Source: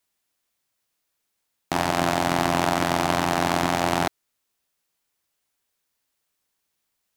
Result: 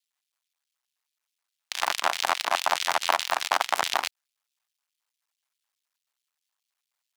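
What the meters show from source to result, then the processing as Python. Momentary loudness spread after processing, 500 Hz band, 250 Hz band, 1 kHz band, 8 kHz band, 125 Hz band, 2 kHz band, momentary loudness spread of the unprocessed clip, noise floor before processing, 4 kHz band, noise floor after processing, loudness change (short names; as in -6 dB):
5 LU, -8.0 dB, -24.0 dB, -2.5 dB, 0.0 dB, under -30 dB, -1.0 dB, 4 LU, -78 dBFS, +2.0 dB, under -85 dBFS, -3.0 dB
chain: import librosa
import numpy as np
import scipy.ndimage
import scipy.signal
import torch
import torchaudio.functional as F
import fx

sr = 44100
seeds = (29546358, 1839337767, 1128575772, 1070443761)

y = fx.cycle_switch(x, sr, every=2, mode='muted')
y = fx.rider(y, sr, range_db=10, speed_s=0.5)
y = fx.filter_lfo_highpass(y, sr, shape='square', hz=4.7, low_hz=950.0, high_hz=3100.0, q=1.3)
y = fx.leveller(y, sr, passes=1)
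y = scipy.signal.sosfilt(scipy.signal.butter(2, 81.0, 'highpass', fs=sr, output='sos'), y)
y = fx.high_shelf(y, sr, hz=10000.0, db=-6.5)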